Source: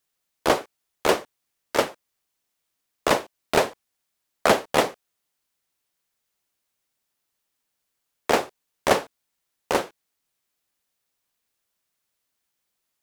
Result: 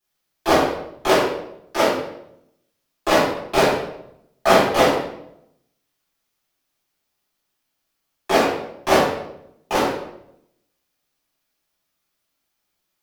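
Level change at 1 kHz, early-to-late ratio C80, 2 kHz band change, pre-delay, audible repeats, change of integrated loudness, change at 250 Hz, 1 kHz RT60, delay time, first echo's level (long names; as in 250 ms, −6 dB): +5.5 dB, 5.0 dB, +4.5 dB, 3 ms, no echo audible, +5.0 dB, +7.5 dB, 0.70 s, no echo audible, no echo audible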